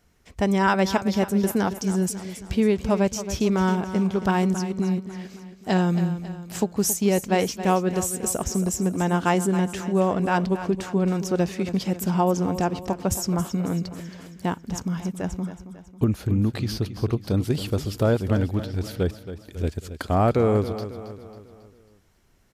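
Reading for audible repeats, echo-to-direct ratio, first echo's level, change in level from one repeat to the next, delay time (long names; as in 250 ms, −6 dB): 4, −11.0 dB, −12.0 dB, −6.0 dB, 273 ms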